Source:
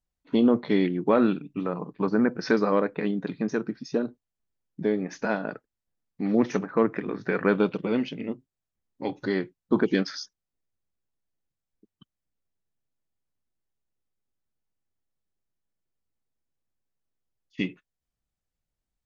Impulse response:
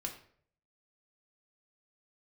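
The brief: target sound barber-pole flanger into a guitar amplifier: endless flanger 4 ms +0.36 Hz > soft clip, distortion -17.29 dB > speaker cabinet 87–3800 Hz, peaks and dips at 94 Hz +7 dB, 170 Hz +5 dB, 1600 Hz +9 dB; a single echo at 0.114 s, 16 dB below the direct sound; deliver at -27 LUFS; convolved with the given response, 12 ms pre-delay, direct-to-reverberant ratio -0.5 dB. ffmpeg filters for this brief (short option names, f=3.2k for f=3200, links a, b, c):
-filter_complex "[0:a]aecho=1:1:114:0.158,asplit=2[a][b];[1:a]atrim=start_sample=2205,adelay=12[c];[b][c]afir=irnorm=-1:irlink=0,volume=1dB[d];[a][d]amix=inputs=2:normalize=0,asplit=2[e][f];[f]adelay=4,afreqshift=0.36[g];[e][g]amix=inputs=2:normalize=1,asoftclip=threshold=-14dB,highpass=87,equalizer=f=94:t=q:w=4:g=7,equalizer=f=170:t=q:w=4:g=5,equalizer=f=1.6k:t=q:w=4:g=9,lowpass=f=3.8k:w=0.5412,lowpass=f=3.8k:w=1.3066,volume=-1.5dB"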